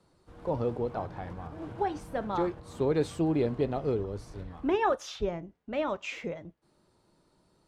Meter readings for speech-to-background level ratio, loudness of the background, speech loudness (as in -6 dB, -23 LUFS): 15.5 dB, -47.5 LUFS, -32.0 LUFS